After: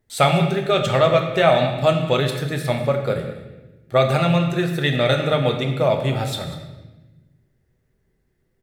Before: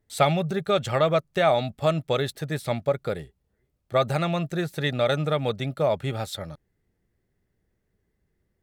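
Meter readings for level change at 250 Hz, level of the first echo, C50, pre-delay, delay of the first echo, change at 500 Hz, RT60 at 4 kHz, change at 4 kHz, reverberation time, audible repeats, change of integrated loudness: +6.5 dB, −16.0 dB, 6.5 dB, 8 ms, 195 ms, +5.5 dB, 0.95 s, +7.0 dB, 1.1 s, 1, +6.0 dB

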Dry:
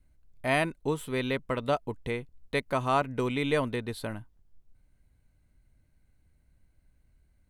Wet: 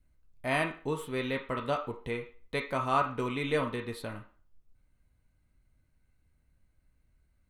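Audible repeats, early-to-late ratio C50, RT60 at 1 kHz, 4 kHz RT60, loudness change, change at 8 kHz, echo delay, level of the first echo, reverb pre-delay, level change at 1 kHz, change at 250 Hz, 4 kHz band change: no echo audible, 9.5 dB, 0.40 s, 0.40 s, −2.5 dB, −4.0 dB, no echo audible, no echo audible, 5 ms, −1.0 dB, −3.5 dB, −3.0 dB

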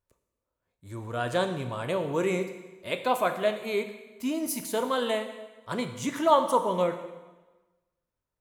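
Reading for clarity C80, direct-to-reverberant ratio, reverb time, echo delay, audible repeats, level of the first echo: 11.0 dB, 6.5 dB, 1.2 s, no echo audible, no echo audible, no echo audible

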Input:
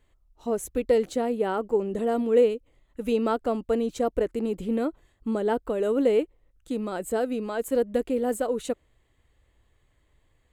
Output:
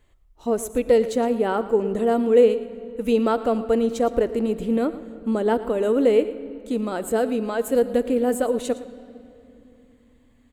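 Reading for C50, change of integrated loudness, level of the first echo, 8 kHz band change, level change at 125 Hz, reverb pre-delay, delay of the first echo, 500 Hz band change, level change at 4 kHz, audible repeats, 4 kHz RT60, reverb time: 13.0 dB, +4.5 dB, −17.0 dB, +4.0 dB, can't be measured, 9 ms, 113 ms, +4.5 dB, +4.5 dB, 1, 2.0 s, 2.8 s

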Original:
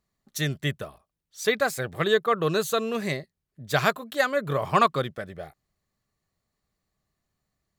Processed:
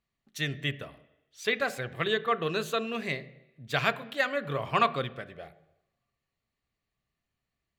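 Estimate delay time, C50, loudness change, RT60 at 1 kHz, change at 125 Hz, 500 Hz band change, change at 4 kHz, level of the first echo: no echo audible, 17.0 dB, −4.5 dB, 0.85 s, −5.5 dB, −6.0 dB, −2.5 dB, no echo audible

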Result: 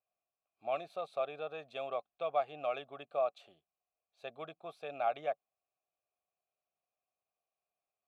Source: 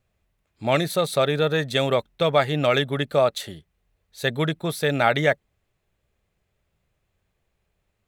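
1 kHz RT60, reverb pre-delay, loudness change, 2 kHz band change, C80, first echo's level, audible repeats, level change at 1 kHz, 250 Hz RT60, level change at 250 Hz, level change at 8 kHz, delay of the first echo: no reverb audible, no reverb audible, −16.0 dB, −23.0 dB, no reverb audible, no echo audible, no echo audible, −11.5 dB, no reverb audible, −28.5 dB, below −35 dB, no echo audible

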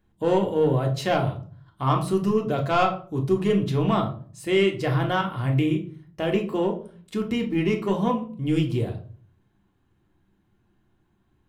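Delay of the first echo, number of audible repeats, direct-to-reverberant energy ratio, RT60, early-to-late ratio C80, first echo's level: no echo audible, no echo audible, 1.5 dB, 0.45 s, 15.5 dB, no echo audible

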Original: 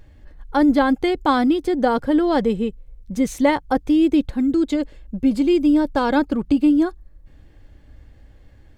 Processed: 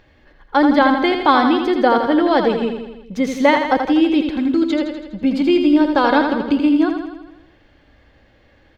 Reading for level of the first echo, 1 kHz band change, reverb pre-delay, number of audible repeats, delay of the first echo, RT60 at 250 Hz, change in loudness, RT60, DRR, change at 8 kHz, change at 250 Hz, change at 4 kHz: −6.5 dB, +6.0 dB, no reverb audible, 7, 82 ms, no reverb audible, +3.0 dB, no reverb audible, no reverb audible, can't be measured, +1.5 dB, +7.0 dB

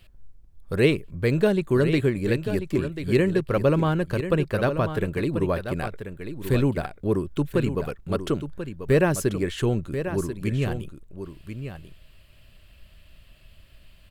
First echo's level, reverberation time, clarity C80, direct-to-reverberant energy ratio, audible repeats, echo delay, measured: −9.5 dB, no reverb audible, no reverb audible, no reverb audible, 1, 1,038 ms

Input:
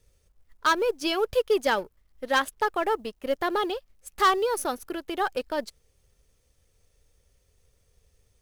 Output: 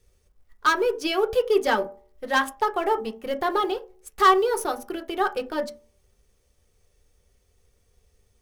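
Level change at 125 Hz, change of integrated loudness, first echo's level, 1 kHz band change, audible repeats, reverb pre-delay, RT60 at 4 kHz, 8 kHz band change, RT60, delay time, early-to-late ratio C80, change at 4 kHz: can't be measured, +2.5 dB, no echo audible, +3.5 dB, no echo audible, 3 ms, 0.20 s, 0.0 dB, 0.45 s, no echo audible, 22.0 dB, +0.5 dB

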